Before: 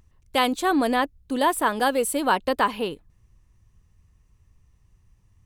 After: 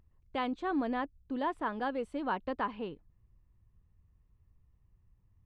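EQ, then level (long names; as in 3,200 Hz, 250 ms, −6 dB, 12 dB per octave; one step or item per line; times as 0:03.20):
dynamic equaliser 530 Hz, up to −4 dB, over −34 dBFS, Q 1
head-to-tape spacing loss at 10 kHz 36 dB
−7.0 dB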